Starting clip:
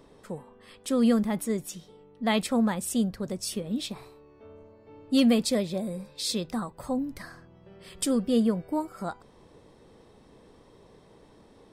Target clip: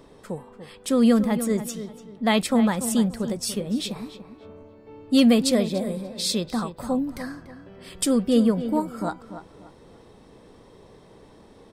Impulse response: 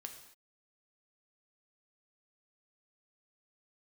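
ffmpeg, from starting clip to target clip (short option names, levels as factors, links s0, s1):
-filter_complex "[0:a]asplit=2[s0][s1];[s1]adelay=290,lowpass=f=2400:p=1,volume=0.282,asplit=2[s2][s3];[s3]adelay=290,lowpass=f=2400:p=1,volume=0.31,asplit=2[s4][s5];[s5]adelay=290,lowpass=f=2400:p=1,volume=0.31[s6];[s0][s2][s4][s6]amix=inputs=4:normalize=0,volume=1.68"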